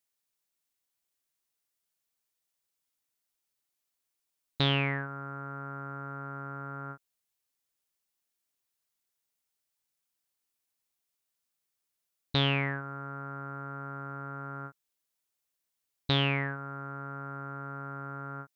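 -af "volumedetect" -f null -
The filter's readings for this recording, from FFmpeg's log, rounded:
mean_volume: -38.3 dB
max_volume: -12.7 dB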